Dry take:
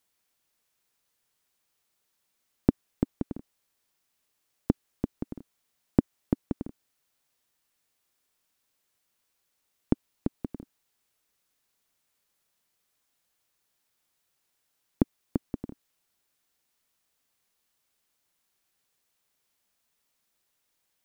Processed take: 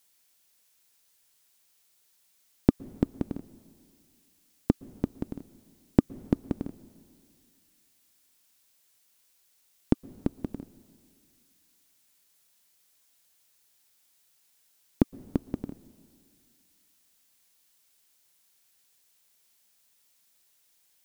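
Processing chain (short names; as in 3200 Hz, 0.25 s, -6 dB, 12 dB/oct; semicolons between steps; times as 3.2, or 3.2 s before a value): high shelf 2700 Hz +9.5 dB; notch 1200 Hz, Q 22; plate-style reverb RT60 2.3 s, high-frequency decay 1×, pre-delay 0.105 s, DRR 20 dB; gain +1.5 dB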